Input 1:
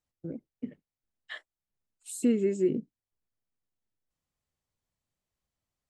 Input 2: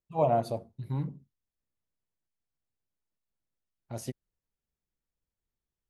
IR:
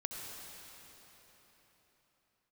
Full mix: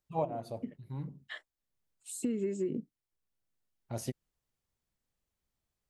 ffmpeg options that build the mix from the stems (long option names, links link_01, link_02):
-filter_complex "[0:a]acrossover=split=170[link_01][link_02];[link_02]acompressor=threshold=-26dB:ratio=6[link_03];[link_01][link_03]amix=inputs=2:normalize=0,volume=-2.5dB,asplit=2[link_04][link_05];[1:a]volume=0.5dB[link_06];[link_05]apad=whole_len=259969[link_07];[link_06][link_07]sidechaincompress=threshold=-48dB:ratio=4:attack=5:release=630[link_08];[link_04][link_08]amix=inputs=2:normalize=0,acompressor=threshold=-28dB:ratio=6"